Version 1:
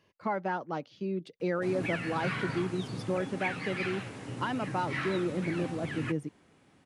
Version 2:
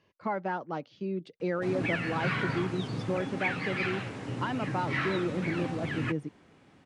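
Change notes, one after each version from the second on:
background +4.0 dB; master: add distance through air 61 m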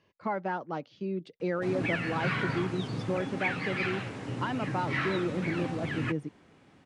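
no change

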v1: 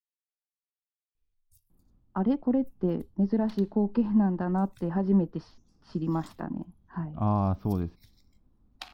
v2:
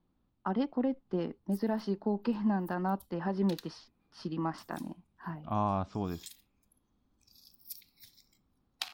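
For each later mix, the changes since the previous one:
speech: entry -1.70 s; master: add tilt EQ +3 dB/octave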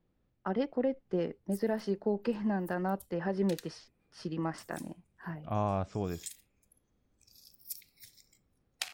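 master: add graphic EQ 125/250/500/1000/2000/4000/8000 Hz +3/-5/+7/-7/+6/-5/+9 dB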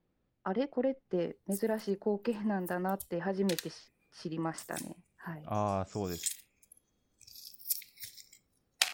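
background +8.5 dB; master: add bass shelf 140 Hz -5.5 dB

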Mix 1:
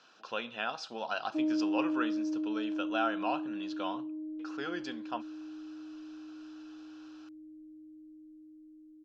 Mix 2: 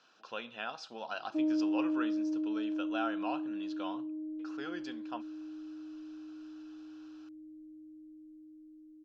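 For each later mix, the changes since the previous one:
speech -4.5 dB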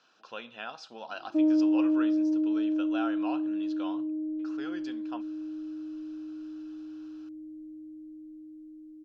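background +7.0 dB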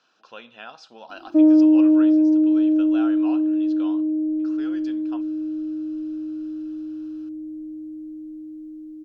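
background +10.0 dB

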